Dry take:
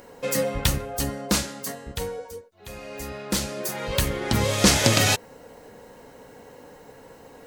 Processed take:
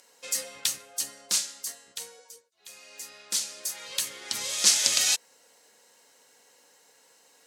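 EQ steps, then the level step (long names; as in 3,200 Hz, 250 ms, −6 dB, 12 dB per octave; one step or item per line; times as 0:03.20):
band-pass filter 130–6,700 Hz
spectral tilt +4.5 dB per octave
high-shelf EQ 4,100 Hz +11.5 dB
−15.5 dB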